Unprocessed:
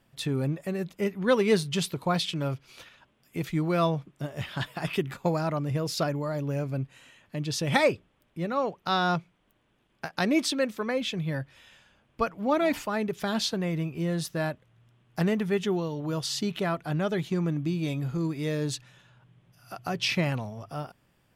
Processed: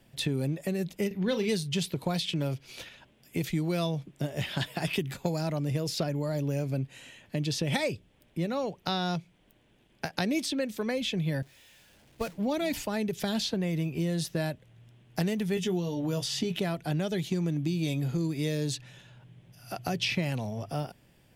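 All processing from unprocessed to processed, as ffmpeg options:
-filter_complex "[0:a]asettb=1/sr,asplit=3[a][b][c];[a]atrim=end=1.074[d];[b]atrim=start=1.07:end=1.49,asetpts=PTS-STARTPTS,afade=t=in:d=0.004:c=qsin,afade=t=out:st=0.416:d=0.004:c=qsin,equalizer=f=9.5k:w=1.1:g=-14,asplit=2[e][f];[f]adelay=38,volume=-10dB[g];[e][g]amix=inputs=2:normalize=0,atrim=end_sample=18522[h];[c]atrim=start=1.486[i];[d][h]acrossfade=d=0.004:c1=hsin:c2=qsin[j];[j][i]acrossfade=d=0.004:c1=qsin:c2=hsin,asettb=1/sr,asplit=3[k][l][m];[k]atrim=end=11.424[n];[l]atrim=start=11.42:end=12.38,asetpts=PTS-STARTPTS,afade=t=in:d=0.004:c=qsin,afade=t=out:st=0.956:d=0.004:c=qsin,aeval=exprs='val(0)+0.5*0.0251*sgn(val(0))':c=same,agate=range=-33dB:threshold=-24dB:ratio=3:release=100:detection=peak,acompressor=threshold=-35dB:ratio=1.5:attack=3.2:release=140:knee=1:detection=peak[o];[m]atrim=start=12.376[p];[n][o]acrossfade=d=0.004:c1=hsin:c2=qsin[q];[q][p]acrossfade=d=0.004:c1=qsin:c2=hsin,asettb=1/sr,asplit=3[r][s][t];[r]atrim=end=15.554[u];[s]atrim=start=15.55:end=16.58,asetpts=PTS-STARTPTS,afade=t=in:d=0.004:c=qsin,afade=t=out:st=1.026:d=0.004:c=qsin,bandreject=f=4.2k:w=10,asplit=2[v][w];[w]adelay=17,volume=-6dB[x];[v][x]amix=inputs=2:normalize=0,atrim=end_sample=45423[y];[t]atrim=start=16.576[z];[u][y]acrossfade=d=0.004:c1=hsin:c2=qsin[aa];[aa][z]acrossfade=d=0.004:c1=qsin:c2=hsin,equalizer=f=1.2k:w=2:g=-9.5,acrossover=split=150|3500[ab][ac][ad];[ab]acompressor=threshold=-43dB:ratio=4[ae];[ac]acompressor=threshold=-36dB:ratio=4[af];[ad]acompressor=threshold=-43dB:ratio=4[ag];[ae][af][ag]amix=inputs=3:normalize=0,volume=6dB"

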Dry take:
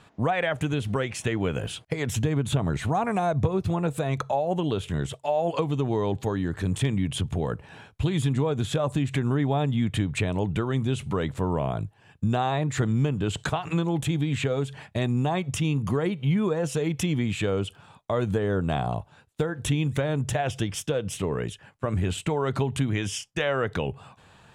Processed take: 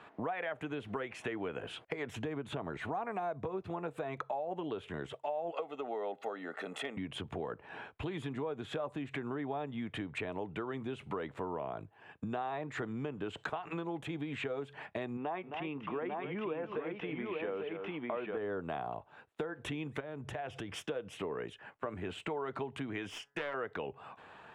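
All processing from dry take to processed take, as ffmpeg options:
-filter_complex "[0:a]asettb=1/sr,asplit=3[a][b][c];[a]atrim=end=5.524[d];[b]atrim=start=5.52:end=6.97,asetpts=PTS-STARTPTS,afade=t=in:d=0.004:c=qsin,afade=t=out:st=1.446:d=0.004:c=qsin,highpass=f=260:w=0.5412,highpass=f=260:w=1.3066,aecho=1:1:1.5:0.66,atrim=end_sample=63945[e];[c]atrim=start=6.966[f];[d][e]acrossfade=d=0.004:c1=hsin:c2=qsin[g];[g][f]acrossfade=d=0.004:c1=qsin:c2=hsin,asettb=1/sr,asplit=3[h][i][j];[h]atrim=end=15.174[k];[i]atrim=start=15.17:end=18.37,asetpts=PTS-STARTPTS,afade=t=in:d=0.004:c=qsin,afade=t=out:st=3.196:d=0.004:c=qsin,lowpass=f=3.1k:w=0.5412,lowpass=f=3.1k:w=1.3066,equalizer=f=90:t=o:w=1.7:g=-12.5,aecho=1:1:265|847:0.299|0.668,atrim=end_sample=141120[l];[j]atrim=start=18.366[m];[k][l]acrossfade=d=0.004:c1=hsin:c2=qsin[n];[n][m]acrossfade=d=0.004:c1=qsin:c2=hsin,asettb=1/sr,asplit=3[o][p][q];[o]atrim=end=20.004[r];[p]atrim=start=20:end=20.73,asetpts=PTS-STARTPTS,afade=t=in:d=0.004:c=qsin,afade=t=out:st=0.726:d=0.004:c=qsin,acompressor=threshold=-33dB:ratio=4:attack=3.2:release=140:knee=1:detection=peak,lowshelf=f=99:g=10.5[s];[q]atrim=start=20.726[t];[r][s]acrossfade=d=0.004:c1=hsin:c2=qsin[u];[u][t]acrossfade=d=0.004:c1=qsin:c2=hsin,asettb=1/sr,asplit=3[v][w][x];[v]atrim=end=23.094[y];[w]atrim=start=23.09:end=23.54,asetpts=PTS-STARTPTS,afade=t=in:d=0.004:c=qsin,afade=t=out:st=0.446:d=0.004:c=qsin,bandreject=f=140.9:t=h:w=4,bandreject=f=281.8:t=h:w=4,bandreject=f=422.7:t=h:w=4,bandreject=f=563.6:t=h:w=4,bandreject=f=704.5:t=h:w=4,bandreject=f=845.4:t=h:w=4,bandreject=f=986.3:t=h:w=4,bandreject=f=1.1272k:t=h:w=4,bandreject=f=1.2681k:t=h:w=4,bandreject=f=1.409k:t=h:w=4,bandreject=f=1.5499k:t=h:w=4,bandreject=f=1.6908k:t=h:w=4,bandreject=f=1.8317k:t=h:w=4,bandreject=f=1.9726k:t=h:w=4,aeval=exprs='clip(val(0),-1,0.0224)':c=same[z];[x]atrim=start=23.536[aa];[y][z]acrossfade=d=0.004:c1=hsin:c2=qsin[ab];[ab][aa]acrossfade=d=0.004:c1=qsin:c2=hsin,acrossover=split=270 2800:gain=0.141 1 0.112[ac][ad][ae];[ac][ad][ae]amix=inputs=3:normalize=0,bandreject=f=540:w=15,acompressor=threshold=-42dB:ratio=3,volume=3dB"

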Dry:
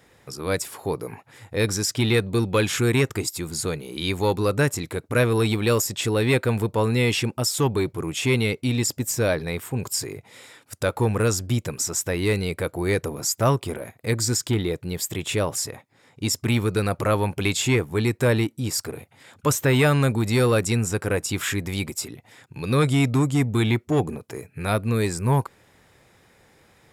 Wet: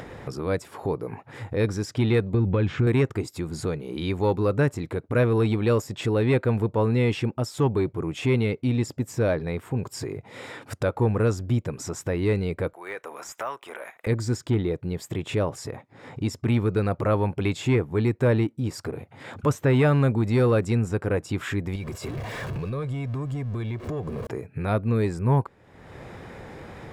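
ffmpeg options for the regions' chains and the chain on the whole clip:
-filter_complex "[0:a]asettb=1/sr,asplit=3[a][b][c];[a]atrim=end=2.344[d];[b]atrim=start=2.34:end=2.87,asetpts=PTS-STARTPTS,afade=t=in:d=0.004:c=qsin,afade=t=out:st=0.526:d=0.004:c=qsin,lowpass=3.7k,lowshelf=f=180:g=11,acompressor=threshold=-17dB:ratio=5:attack=3.2:release=140:knee=1:detection=peak[e];[c]atrim=start=2.866[f];[d][e]acrossfade=d=0.004:c1=hsin:c2=qsin[g];[g][f]acrossfade=d=0.004:c1=qsin:c2=hsin,asettb=1/sr,asplit=3[h][i][j];[h]atrim=end=12.734[k];[i]atrim=start=12.73:end=14.07,asetpts=PTS-STARTPTS,afade=t=in:d=0.004:c=qsin,afade=t=out:st=1.336:d=0.004:c=qsin,highpass=1.2k,equalizer=f=4.5k:w=5.4:g=-12,deesser=0.85[l];[j]atrim=start=14.066[m];[k][l]acrossfade=d=0.004:c1=hsin:c2=qsin[n];[n][m]acrossfade=d=0.004:c1=qsin:c2=hsin,asettb=1/sr,asplit=3[o][p][q];[o]atrim=end=21.754[r];[p]atrim=start=21.75:end=24.27,asetpts=PTS-STARTPTS,afade=t=in:d=0.004:c=qsin,afade=t=out:st=2.516:d=0.004:c=qsin,aeval=exprs='val(0)+0.5*0.0266*sgn(val(0))':c=same,acompressor=threshold=-31dB:ratio=3:attack=3.2:release=140:knee=1:detection=peak,aecho=1:1:1.8:0.43,atrim=end_sample=111132[s];[q]atrim=start=24.266[t];[r][s]acrossfade=d=0.004:c1=hsin:c2=qsin[u];[u][t]acrossfade=d=0.004:c1=qsin:c2=hsin,lowpass=f=1.1k:p=1,acompressor=mode=upward:threshold=-25dB:ratio=2.5"

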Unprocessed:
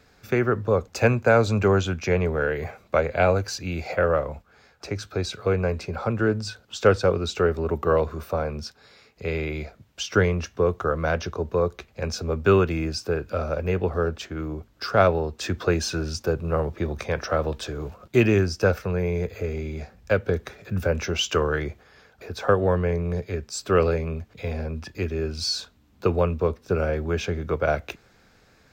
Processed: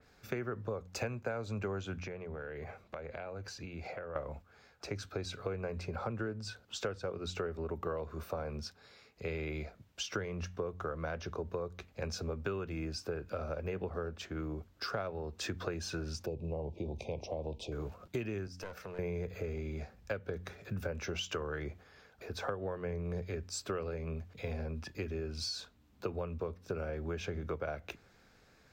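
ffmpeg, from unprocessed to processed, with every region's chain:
-filter_complex "[0:a]asettb=1/sr,asplit=3[a][b][c];[a]atrim=end=2.014[d];[b]atrim=start=2.01:end=4.16,asetpts=PTS-STARTPTS,afade=t=in:d=0.004:c=qsin,afade=t=out:st=2.146:d=0.004:c=qsin,acompressor=threshold=-32dB:ratio=12:attack=3.2:release=140:knee=1:detection=peak,highshelf=f=6k:g=-8.5[e];[c]atrim=start=4.156[f];[d][e]acrossfade=d=0.004:c1=hsin:c2=qsin[g];[g][f]acrossfade=d=0.004:c1=qsin:c2=hsin,asettb=1/sr,asplit=3[h][i][j];[h]atrim=end=16.264[k];[i]atrim=start=16.26:end=17.72,asetpts=PTS-STARTPTS,afade=t=in:d=0.004:c=qsin,afade=t=out:st=1.456:d=0.004:c=qsin,aemphasis=mode=reproduction:type=50kf,acompressor=threshold=-28dB:ratio=1.5:attack=3.2:release=140:knee=1:detection=peak,asuperstop=centerf=1500:order=8:qfactor=0.99[l];[j]atrim=start=17.716[m];[k][l]acrossfade=d=0.004:c1=hsin:c2=qsin[n];[n][m]acrossfade=d=0.004:c1=qsin:c2=hsin,asettb=1/sr,asplit=3[o][p][q];[o]atrim=end=18.474[r];[p]atrim=start=18.47:end=18.99,asetpts=PTS-STARTPTS,afade=t=in:d=0.004:c=qsin,afade=t=out:st=0.516:d=0.004:c=qsin,lowshelf=f=190:g=-9.5,aeval=exprs='clip(val(0),-1,0.0447)':c=same,acompressor=threshold=-36dB:ratio=3:attack=3.2:release=140:knee=1:detection=peak[s];[q]atrim=start=18.986[t];[r][s]acrossfade=d=0.004:c1=hsin:c2=qsin[u];[u][t]acrossfade=d=0.004:c1=qsin:c2=hsin,bandreject=f=90.29:t=h:w=4,bandreject=f=180.58:t=h:w=4,bandreject=f=270.87:t=h:w=4,acompressor=threshold=-27dB:ratio=12,adynamicequalizer=threshold=0.00447:dfrequency=2900:dqfactor=0.7:tfrequency=2900:tqfactor=0.7:attack=5:release=100:ratio=0.375:range=1.5:mode=cutabove:tftype=highshelf,volume=-6.5dB"

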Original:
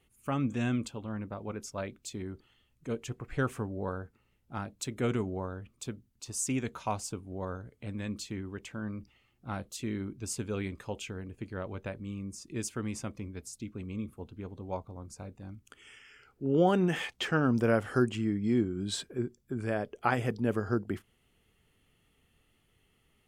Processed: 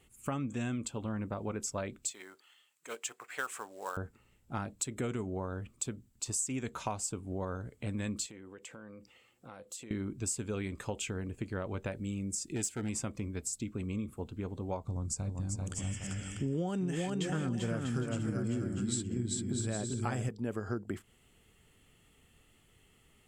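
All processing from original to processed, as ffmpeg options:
-filter_complex "[0:a]asettb=1/sr,asplit=3[a][b][c];[a]atrim=end=2.114[d];[b]atrim=start=2.11:end=3.97,asetpts=PTS-STARTPTS,afade=t=in:d=0.004:c=qsin,afade=t=out:st=1.856:d=0.004:c=qsin,highpass=930,acrusher=bits=4:mode=log:mix=0:aa=0.000001[e];[c]atrim=start=3.966[f];[d][e]acrossfade=d=0.004:c1=hsin:c2=qsin[g];[g][f]acrossfade=d=0.004:c1=qsin:c2=hsin,asettb=1/sr,asplit=3[h][i][j];[h]atrim=end=8.264[k];[i]atrim=start=8.26:end=9.91,asetpts=PTS-STARTPTS,afade=t=in:d=0.004:c=qsin,afade=t=out:st=1.646:d=0.004:c=qsin,highpass=f=340:p=1,equalizer=f=500:t=o:w=0.21:g=12.5,acompressor=threshold=-52dB:ratio=4:attack=3.2:release=140:knee=1:detection=peak[l];[j]atrim=start=9.906[m];[k][l]acrossfade=d=0.004:c1=hsin:c2=qsin[n];[n][m]acrossfade=d=0.004:c1=qsin:c2=hsin,asettb=1/sr,asplit=3[o][p][q];[o]atrim=end=11.914[r];[p]atrim=start=11.91:end=12.89,asetpts=PTS-STARTPTS,afade=t=in:d=0.004:c=qsin,afade=t=out:st=0.976:d=0.004:c=qsin,bass=f=250:g=-1,treble=f=4k:g=3,asoftclip=type=hard:threshold=-31dB,asuperstop=centerf=1100:order=4:qfactor=3.2[s];[q]atrim=start=12.886[t];[r][s]acrossfade=d=0.004:c1=hsin:c2=qsin[u];[u][t]acrossfade=d=0.004:c1=qsin:c2=hsin,asettb=1/sr,asplit=3[v][w][x];[v]atrim=end=14.854[y];[w]atrim=start=14.85:end=20.29,asetpts=PTS-STARTPTS,afade=t=in:d=0.004:c=qsin,afade=t=out:st=5.436:d=0.004:c=qsin,lowpass=9.2k,bass=f=250:g=10,treble=f=4k:g=10,aecho=1:1:390|643.5|808.3|915.4|985:0.631|0.398|0.251|0.158|0.1,atrim=end_sample=239904[z];[x]atrim=start=20.286[aa];[y][z]acrossfade=d=0.004:c1=hsin:c2=qsin[ab];[ab][aa]acrossfade=d=0.004:c1=qsin:c2=hsin,equalizer=f=7.7k:w=4.7:g=11.5,acompressor=threshold=-37dB:ratio=6,volume=4.5dB"

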